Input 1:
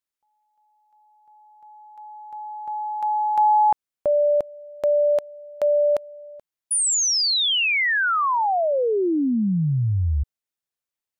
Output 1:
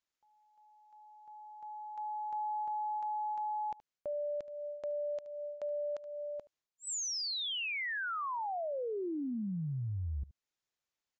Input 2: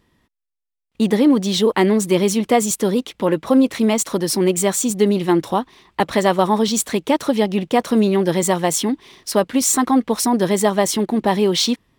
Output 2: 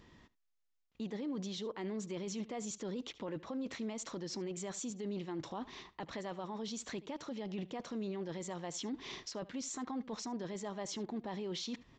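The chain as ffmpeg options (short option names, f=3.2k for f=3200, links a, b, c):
-af "areverse,acompressor=threshold=-29dB:ratio=6:attack=0.8:release=141:knee=6:detection=rms,areverse,aecho=1:1:74:0.0891,aresample=16000,aresample=44100,alimiter=level_in=10dB:limit=-24dB:level=0:latency=1:release=249,volume=-10dB,volume=1dB"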